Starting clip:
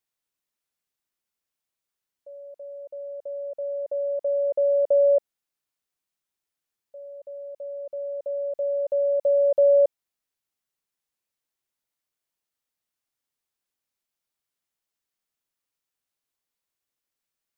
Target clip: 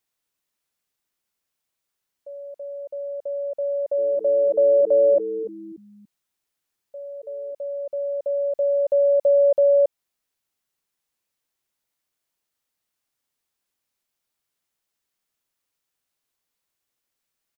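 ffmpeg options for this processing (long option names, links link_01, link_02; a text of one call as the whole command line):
ffmpeg -i in.wav -filter_complex "[0:a]alimiter=limit=-17.5dB:level=0:latency=1:release=113,asplit=3[link_01][link_02][link_03];[link_01]afade=type=out:start_time=3.97:duration=0.02[link_04];[link_02]asplit=4[link_05][link_06][link_07][link_08];[link_06]adelay=290,afreqshift=-120,volume=-12dB[link_09];[link_07]adelay=580,afreqshift=-240,volume=-22.5dB[link_10];[link_08]adelay=870,afreqshift=-360,volume=-32.9dB[link_11];[link_05][link_09][link_10][link_11]amix=inputs=4:normalize=0,afade=type=in:start_time=3.97:duration=0.02,afade=type=out:start_time=7.52:duration=0.02[link_12];[link_03]afade=type=in:start_time=7.52:duration=0.02[link_13];[link_04][link_12][link_13]amix=inputs=3:normalize=0,volume=5dB" out.wav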